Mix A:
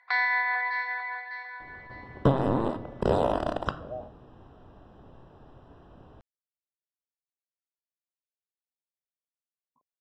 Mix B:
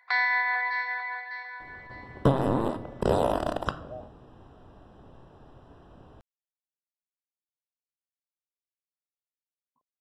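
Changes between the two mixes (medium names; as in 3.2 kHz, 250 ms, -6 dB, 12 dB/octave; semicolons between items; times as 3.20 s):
speech -4.0 dB; master: remove distance through air 72 m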